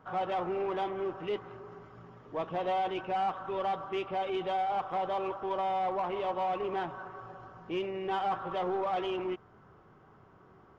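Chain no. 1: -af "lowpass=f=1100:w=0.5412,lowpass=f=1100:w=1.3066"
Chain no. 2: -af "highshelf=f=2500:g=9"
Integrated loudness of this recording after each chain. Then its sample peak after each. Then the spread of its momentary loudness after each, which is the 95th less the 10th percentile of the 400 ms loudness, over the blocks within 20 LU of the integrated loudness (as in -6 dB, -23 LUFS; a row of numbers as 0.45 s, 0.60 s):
-34.0 LUFS, -32.5 LUFS; -24.0 dBFS, -23.0 dBFS; 15 LU, 13 LU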